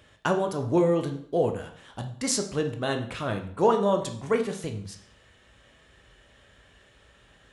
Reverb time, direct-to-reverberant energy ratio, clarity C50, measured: 0.55 s, 4.5 dB, 10.0 dB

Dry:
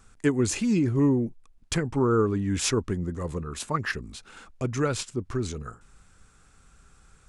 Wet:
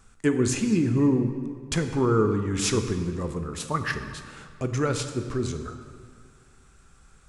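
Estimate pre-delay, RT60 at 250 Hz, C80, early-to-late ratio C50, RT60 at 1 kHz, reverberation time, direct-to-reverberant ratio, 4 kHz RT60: 13 ms, 2.1 s, 9.0 dB, 8.5 dB, 2.0 s, 2.0 s, 7.0 dB, 1.4 s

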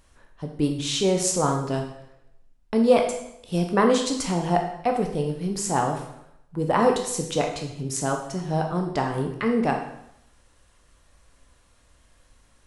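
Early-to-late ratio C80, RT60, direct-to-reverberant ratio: 9.0 dB, 0.80 s, 2.5 dB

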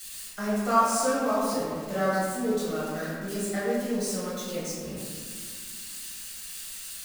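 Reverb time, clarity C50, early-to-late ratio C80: 1.9 s, -2.0 dB, 0.0 dB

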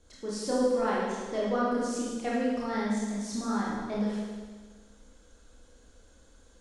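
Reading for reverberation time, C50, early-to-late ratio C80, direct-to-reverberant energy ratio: 1.5 s, -2.0 dB, 1.0 dB, -6.5 dB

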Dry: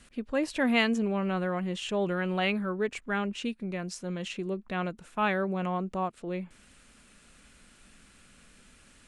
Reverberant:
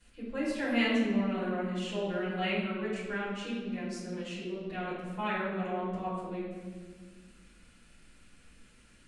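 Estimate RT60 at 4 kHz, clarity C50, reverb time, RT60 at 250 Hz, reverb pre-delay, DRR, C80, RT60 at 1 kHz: 1.1 s, 0.0 dB, 1.5 s, 2.4 s, 6 ms, -11.0 dB, 2.5 dB, 1.3 s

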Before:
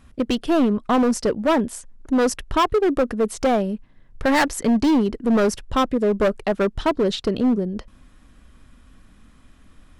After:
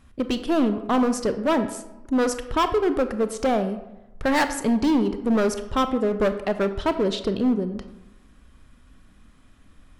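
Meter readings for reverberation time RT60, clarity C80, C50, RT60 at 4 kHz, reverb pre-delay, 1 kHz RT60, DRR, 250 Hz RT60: 1.0 s, 13.0 dB, 11.5 dB, 0.55 s, 25 ms, 1.0 s, 9.5 dB, 0.95 s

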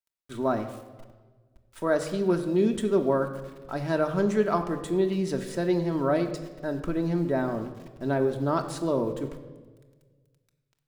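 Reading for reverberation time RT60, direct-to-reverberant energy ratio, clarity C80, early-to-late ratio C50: 1.4 s, 4.0 dB, 12.0 dB, 10.5 dB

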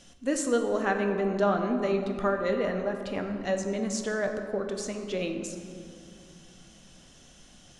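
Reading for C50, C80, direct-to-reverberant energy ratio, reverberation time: 6.0 dB, 6.5 dB, 4.0 dB, 2.5 s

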